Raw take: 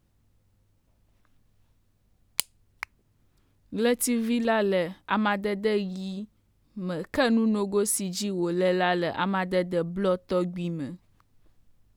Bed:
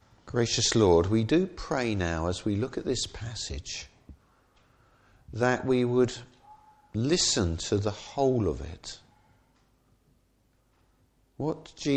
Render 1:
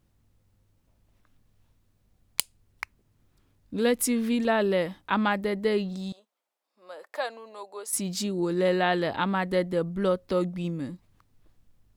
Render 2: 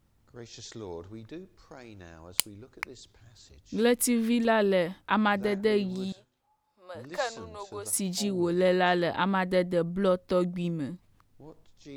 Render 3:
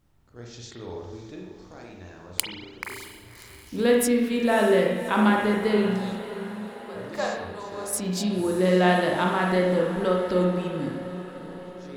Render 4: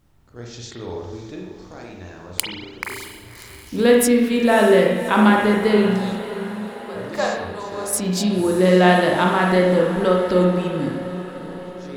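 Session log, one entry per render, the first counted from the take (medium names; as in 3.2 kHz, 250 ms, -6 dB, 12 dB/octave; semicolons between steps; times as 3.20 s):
6.12–7.93 s: ladder high-pass 540 Hz, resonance 40%
add bed -19 dB
echo that smears into a reverb 590 ms, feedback 58%, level -13 dB; spring tank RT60 1 s, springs 33/43 ms, chirp 30 ms, DRR -1 dB
trim +6 dB; peak limiter -2 dBFS, peak gain reduction 3 dB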